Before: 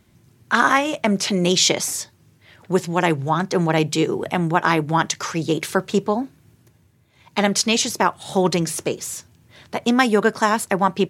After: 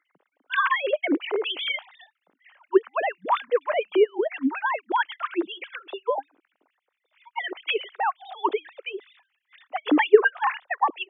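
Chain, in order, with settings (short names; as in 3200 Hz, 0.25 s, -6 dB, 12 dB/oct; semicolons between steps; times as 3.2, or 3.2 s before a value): sine-wave speech; LFO high-pass sine 4.2 Hz 260–2800 Hz; gain -6.5 dB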